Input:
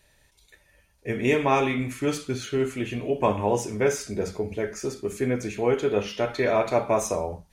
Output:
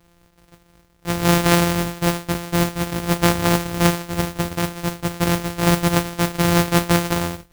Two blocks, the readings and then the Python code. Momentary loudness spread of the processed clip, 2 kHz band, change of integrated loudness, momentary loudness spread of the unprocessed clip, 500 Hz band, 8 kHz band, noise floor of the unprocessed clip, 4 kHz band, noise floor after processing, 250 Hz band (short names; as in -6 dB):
8 LU, +7.5 dB, +6.0 dB, 8 LU, 0.0 dB, +9.5 dB, -63 dBFS, +12.5 dB, -57 dBFS, +8.5 dB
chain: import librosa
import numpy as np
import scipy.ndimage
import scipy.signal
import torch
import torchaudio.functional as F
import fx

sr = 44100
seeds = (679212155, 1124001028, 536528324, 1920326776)

y = np.r_[np.sort(x[:len(x) // 256 * 256].reshape(-1, 256), axis=1).ravel(), x[len(x) // 256 * 256:]]
y = fx.mod_noise(y, sr, seeds[0], snr_db=14)
y = F.gain(torch.from_numpy(y), 5.5).numpy()